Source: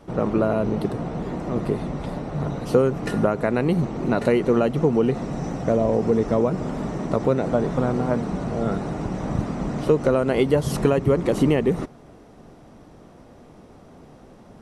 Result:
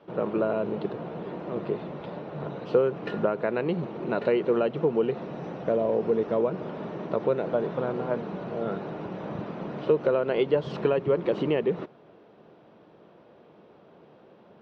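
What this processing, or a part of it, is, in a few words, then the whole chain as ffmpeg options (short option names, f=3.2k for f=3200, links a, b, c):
kitchen radio: -af "highpass=230,equalizer=f=260:t=q:w=4:g=-10,equalizer=f=760:t=q:w=4:g=-5,equalizer=f=1.2k:t=q:w=4:g=-4,equalizer=f=2k:t=q:w=4:g=-6,lowpass=f=3.5k:w=0.5412,lowpass=f=3.5k:w=1.3066,volume=-2dB"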